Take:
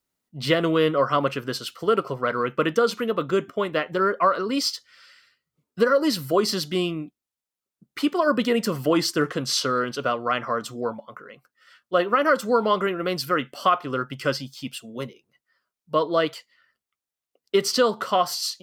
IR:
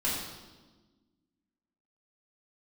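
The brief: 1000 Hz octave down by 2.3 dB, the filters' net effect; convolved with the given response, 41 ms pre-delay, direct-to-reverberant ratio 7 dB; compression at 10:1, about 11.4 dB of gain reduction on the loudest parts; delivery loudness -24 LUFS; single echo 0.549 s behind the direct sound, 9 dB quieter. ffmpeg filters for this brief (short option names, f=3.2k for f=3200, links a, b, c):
-filter_complex "[0:a]equalizer=f=1k:t=o:g=-3,acompressor=threshold=-27dB:ratio=10,aecho=1:1:549:0.355,asplit=2[a][b];[1:a]atrim=start_sample=2205,adelay=41[c];[b][c]afir=irnorm=-1:irlink=0,volume=-15dB[d];[a][d]amix=inputs=2:normalize=0,volume=7.5dB"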